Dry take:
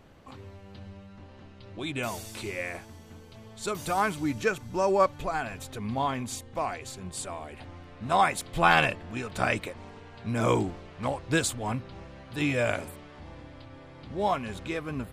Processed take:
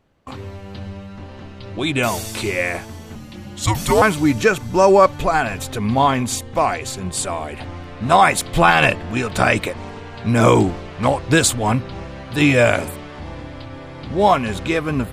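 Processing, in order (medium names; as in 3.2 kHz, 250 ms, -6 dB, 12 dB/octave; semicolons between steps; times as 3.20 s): gate with hold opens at -42 dBFS; 3.15–4.02 s: frequency shift -310 Hz; loudness maximiser +14 dB; trim -1 dB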